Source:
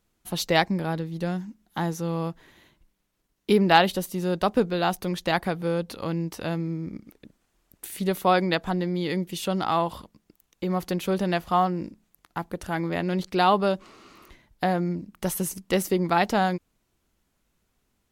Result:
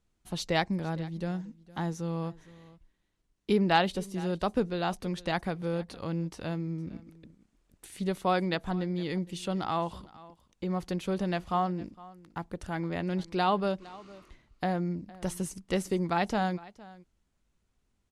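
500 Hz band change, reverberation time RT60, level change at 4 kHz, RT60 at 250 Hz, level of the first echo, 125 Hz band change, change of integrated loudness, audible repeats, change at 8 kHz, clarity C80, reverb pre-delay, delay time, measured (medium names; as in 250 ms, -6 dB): -6.5 dB, no reverb, -7.0 dB, no reverb, -20.5 dB, -4.0 dB, -6.0 dB, 1, -8.5 dB, no reverb, no reverb, 460 ms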